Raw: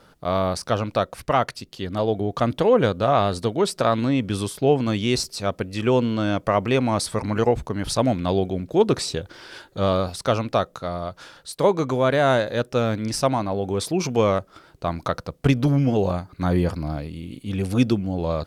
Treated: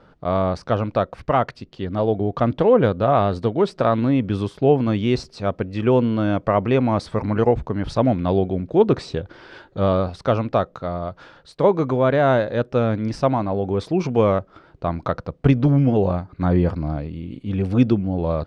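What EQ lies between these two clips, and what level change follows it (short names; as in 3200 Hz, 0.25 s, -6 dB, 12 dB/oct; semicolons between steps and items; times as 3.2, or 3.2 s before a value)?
tape spacing loss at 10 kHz 27 dB; +3.5 dB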